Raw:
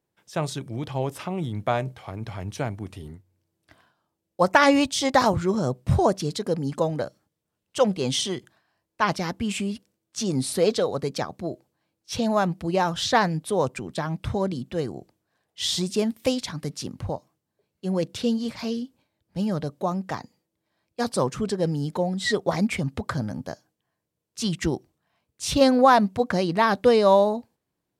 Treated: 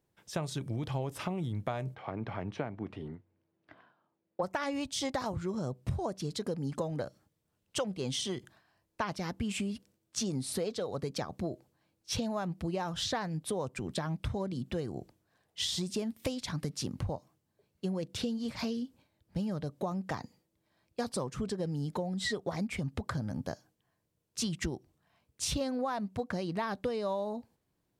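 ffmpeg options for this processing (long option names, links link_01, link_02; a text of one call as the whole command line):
ffmpeg -i in.wav -filter_complex "[0:a]asplit=3[link_01][link_02][link_03];[link_01]afade=type=out:start_time=1.94:duration=0.02[link_04];[link_02]highpass=190,lowpass=2300,afade=type=in:start_time=1.94:duration=0.02,afade=type=out:start_time=4.42:duration=0.02[link_05];[link_03]afade=type=in:start_time=4.42:duration=0.02[link_06];[link_04][link_05][link_06]amix=inputs=3:normalize=0,lowshelf=frequency=110:gain=7.5,acompressor=threshold=-31dB:ratio=10" out.wav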